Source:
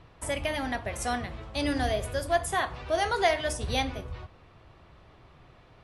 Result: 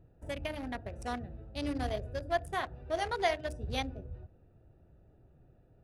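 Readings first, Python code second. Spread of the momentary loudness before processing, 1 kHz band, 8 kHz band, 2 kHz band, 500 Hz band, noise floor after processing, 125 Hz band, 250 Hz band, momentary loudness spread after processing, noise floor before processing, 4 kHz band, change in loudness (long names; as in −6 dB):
9 LU, −6.5 dB, −15.0 dB, −8.0 dB, −6.5 dB, −63 dBFS, −5.0 dB, −5.5 dB, 11 LU, −56 dBFS, −8.0 dB, −7.0 dB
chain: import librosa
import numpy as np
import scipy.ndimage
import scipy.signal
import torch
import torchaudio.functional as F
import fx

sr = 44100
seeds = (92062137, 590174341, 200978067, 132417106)

y = fx.wiener(x, sr, points=41)
y = y * 10.0 ** (-5.0 / 20.0)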